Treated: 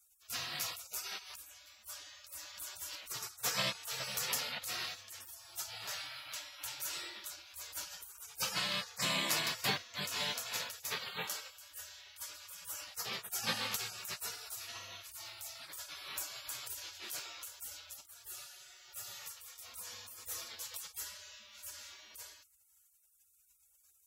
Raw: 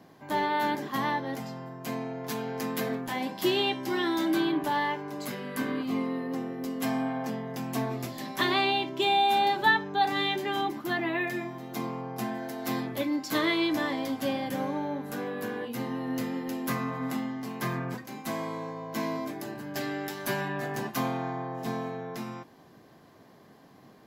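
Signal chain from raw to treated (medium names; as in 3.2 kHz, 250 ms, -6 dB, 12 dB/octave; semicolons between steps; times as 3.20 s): frequency weighting D; spectral gate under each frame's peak -30 dB weak; trim +7.5 dB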